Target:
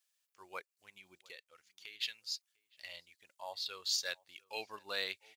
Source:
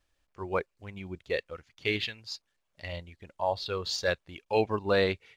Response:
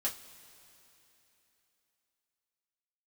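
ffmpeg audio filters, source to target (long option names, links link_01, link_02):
-filter_complex "[0:a]aderivative,asplit=3[link_01][link_02][link_03];[link_01]afade=type=out:start_time=0.6:duration=0.02[link_04];[link_02]acompressor=threshold=-54dB:ratio=4,afade=type=in:start_time=0.6:duration=0.02,afade=type=out:start_time=2:duration=0.02[link_05];[link_03]afade=type=in:start_time=2:duration=0.02[link_06];[link_04][link_05][link_06]amix=inputs=3:normalize=0,asplit=2[link_07][link_08];[link_08]adelay=699.7,volume=-25dB,highshelf=frequency=4000:gain=-15.7[link_09];[link_07][link_09]amix=inputs=2:normalize=0,volume=3dB"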